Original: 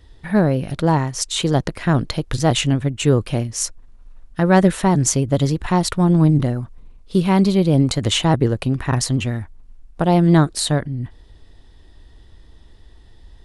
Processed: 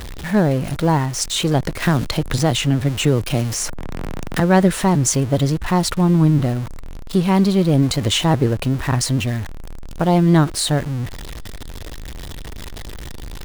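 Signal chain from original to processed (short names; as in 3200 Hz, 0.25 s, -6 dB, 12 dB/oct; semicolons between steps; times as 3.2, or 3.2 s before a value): zero-crossing step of -25 dBFS; 1.82–4.4 three-band squash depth 70%; gain -1 dB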